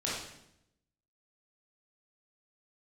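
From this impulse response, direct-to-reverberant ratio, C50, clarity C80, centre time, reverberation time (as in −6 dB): −7.0 dB, 0.0 dB, 4.0 dB, 64 ms, 0.80 s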